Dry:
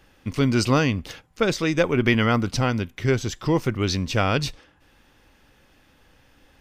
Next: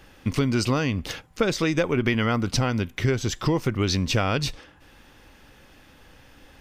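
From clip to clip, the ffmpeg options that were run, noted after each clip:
ffmpeg -i in.wav -af "acompressor=threshold=-25dB:ratio=5,volume=5.5dB" out.wav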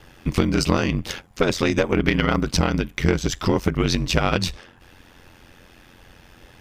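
ffmpeg -i in.wav -af "aeval=exprs='val(0)*sin(2*PI*44*n/s)':channel_layout=same,aeval=exprs='0.299*(cos(1*acos(clip(val(0)/0.299,-1,1)))-cos(1*PI/2))+0.075*(cos(2*acos(clip(val(0)/0.299,-1,1)))-cos(2*PI/2))':channel_layout=same,volume=5.5dB" out.wav

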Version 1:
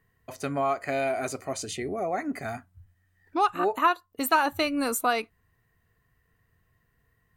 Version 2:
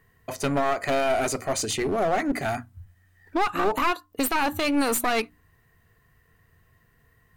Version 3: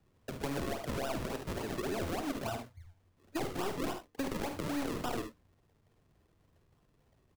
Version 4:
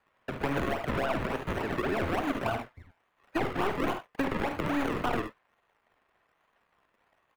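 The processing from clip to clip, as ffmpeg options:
ffmpeg -i in.wav -af "bandreject=frequency=60:width_type=h:width=6,bandreject=frequency=120:width_type=h:width=6,bandreject=frequency=180:width_type=h:width=6,bandreject=frequency=240:width_type=h:width=6,bandreject=frequency=300:width_type=h:width=6,aeval=exprs='clip(val(0),-1,0.0266)':channel_layout=same,alimiter=limit=-21dB:level=0:latency=1:release=41,volume=8dB" out.wav
ffmpeg -i in.wav -filter_complex "[0:a]acrusher=samples=40:mix=1:aa=0.000001:lfo=1:lforange=40:lforate=3.5,asplit=2[link_01][link_02];[link_02]aecho=0:1:51|73:0.335|0.237[link_03];[link_01][link_03]amix=inputs=2:normalize=0,acrossover=split=270|1200[link_04][link_05][link_06];[link_04]acompressor=threshold=-31dB:ratio=4[link_07];[link_05]acompressor=threshold=-28dB:ratio=4[link_08];[link_06]acompressor=threshold=-34dB:ratio=4[link_09];[link_07][link_08][link_09]amix=inputs=3:normalize=0,volume=-8dB" out.wav
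ffmpeg -i in.wav -filter_complex "[0:a]acrossover=split=590|2400[link_01][link_02][link_03];[link_01]aeval=exprs='sgn(val(0))*max(abs(val(0))-0.00178,0)':channel_layout=same[link_04];[link_02]crystalizer=i=6.5:c=0[link_05];[link_03]acrusher=samples=23:mix=1:aa=0.000001:lfo=1:lforange=13.8:lforate=1.2[link_06];[link_04][link_05][link_06]amix=inputs=3:normalize=0,volume=6dB" out.wav

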